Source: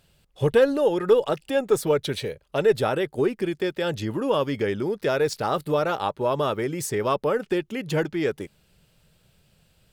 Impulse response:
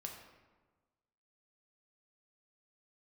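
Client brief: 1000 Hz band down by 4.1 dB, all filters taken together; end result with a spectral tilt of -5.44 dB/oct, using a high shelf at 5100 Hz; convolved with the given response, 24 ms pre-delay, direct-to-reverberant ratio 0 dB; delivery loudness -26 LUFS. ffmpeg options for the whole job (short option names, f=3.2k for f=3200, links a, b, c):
-filter_complex "[0:a]equalizer=f=1k:t=o:g=-5,highshelf=f=5.1k:g=-7.5,asplit=2[a][b];[1:a]atrim=start_sample=2205,adelay=24[c];[b][c]afir=irnorm=-1:irlink=0,volume=2.5dB[d];[a][d]amix=inputs=2:normalize=0,volume=-3.5dB"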